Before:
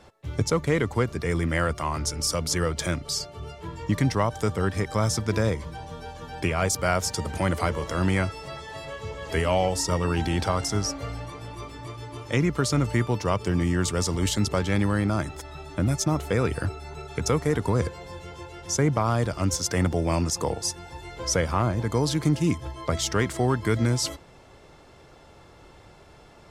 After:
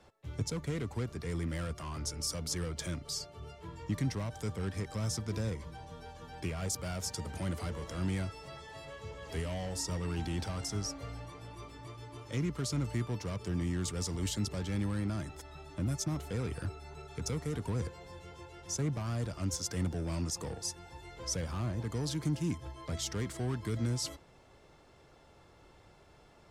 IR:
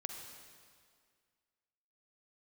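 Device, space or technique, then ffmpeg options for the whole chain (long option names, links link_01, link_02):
one-band saturation: -filter_complex "[0:a]acrossover=split=300|3400[link_01][link_02][link_03];[link_02]asoftclip=type=tanh:threshold=-32dB[link_04];[link_01][link_04][link_03]amix=inputs=3:normalize=0,volume=-9dB"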